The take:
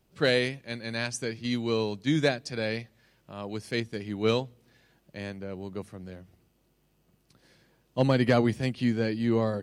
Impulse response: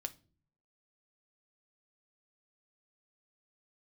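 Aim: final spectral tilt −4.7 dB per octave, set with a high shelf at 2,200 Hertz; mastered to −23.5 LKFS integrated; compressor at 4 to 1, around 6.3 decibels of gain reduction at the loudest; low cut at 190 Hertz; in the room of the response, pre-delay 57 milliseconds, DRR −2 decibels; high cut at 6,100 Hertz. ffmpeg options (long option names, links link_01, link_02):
-filter_complex "[0:a]highpass=190,lowpass=6100,highshelf=frequency=2200:gain=-4.5,acompressor=threshold=-27dB:ratio=4,asplit=2[link_01][link_02];[1:a]atrim=start_sample=2205,adelay=57[link_03];[link_02][link_03]afir=irnorm=-1:irlink=0,volume=4dB[link_04];[link_01][link_04]amix=inputs=2:normalize=0,volume=6dB"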